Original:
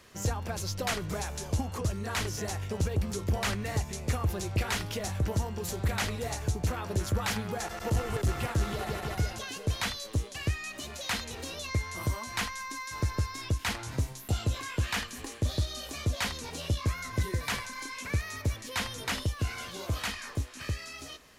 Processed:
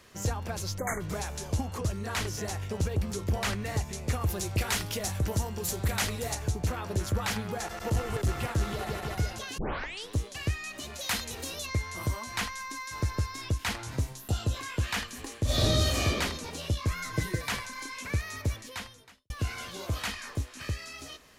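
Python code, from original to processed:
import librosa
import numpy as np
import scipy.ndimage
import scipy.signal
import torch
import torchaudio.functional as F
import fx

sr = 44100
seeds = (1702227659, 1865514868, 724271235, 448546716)

y = fx.spec_erase(x, sr, start_s=0.78, length_s=0.22, low_hz=2300.0, high_hz=6100.0)
y = fx.high_shelf(y, sr, hz=5600.0, db=8.0, at=(4.21, 6.35))
y = fx.high_shelf(y, sr, hz=8600.0, db=10.5, at=(10.99, 11.66))
y = fx.notch(y, sr, hz=2200.0, q=5.9, at=(14.16, 14.57))
y = fx.reverb_throw(y, sr, start_s=15.44, length_s=0.62, rt60_s=1.1, drr_db=-10.5)
y = fx.comb(y, sr, ms=6.4, depth=0.84, at=(16.91, 17.42))
y = fx.edit(y, sr, fx.tape_start(start_s=9.58, length_s=0.56),
    fx.fade_out_span(start_s=18.54, length_s=0.76, curve='qua'), tone=tone)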